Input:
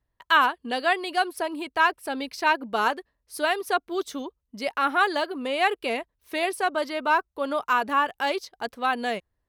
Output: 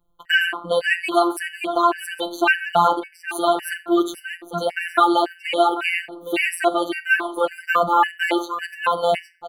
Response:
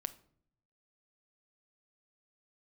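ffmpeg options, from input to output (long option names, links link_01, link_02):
-filter_complex "[0:a]bandreject=frequency=60:width_type=h:width=6,bandreject=frequency=120:width_type=h:width=6,bandreject=frequency=180:width_type=h:width=6,bandreject=frequency=240:width_type=h:width=6[link_01];[1:a]atrim=start_sample=2205[link_02];[link_01][link_02]afir=irnorm=-1:irlink=0,afftfilt=real='hypot(re,im)*cos(PI*b)':imag='0':win_size=1024:overlap=0.75,equalizer=frequency=5200:width=2.8:gain=-12,acontrast=57,aecho=1:1:815:0.211,alimiter=level_in=9dB:limit=-1dB:release=50:level=0:latency=1,afftfilt=real='re*gt(sin(2*PI*1.8*pts/sr)*(1-2*mod(floor(b*sr/1024/1500),2)),0)':imag='im*gt(sin(2*PI*1.8*pts/sr)*(1-2*mod(floor(b*sr/1024/1500),2)),0)':win_size=1024:overlap=0.75"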